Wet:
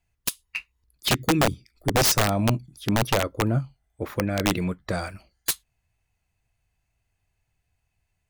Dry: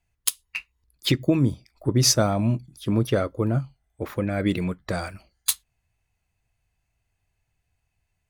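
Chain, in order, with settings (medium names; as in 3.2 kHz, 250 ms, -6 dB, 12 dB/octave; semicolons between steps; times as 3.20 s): 1.10–2.08 s: high-order bell 780 Hz -14.5 dB 1.2 oct; integer overflow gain 13.5 dB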